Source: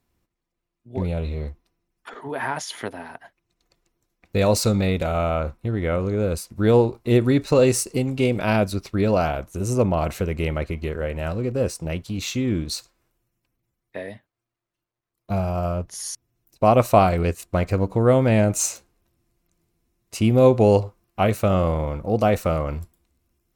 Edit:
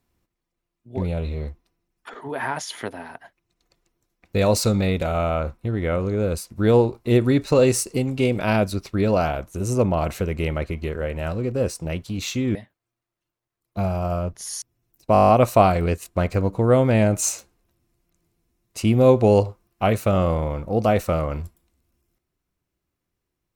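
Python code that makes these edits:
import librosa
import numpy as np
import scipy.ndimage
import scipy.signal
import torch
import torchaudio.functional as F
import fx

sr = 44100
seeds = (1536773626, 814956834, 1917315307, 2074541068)

y = fx.edit(x, sr, fx.cut(start_s=12.55, length_s=1.53),
    fx.stutter(start_s=16.66, slice_s=0.02, count=9), tone=tone)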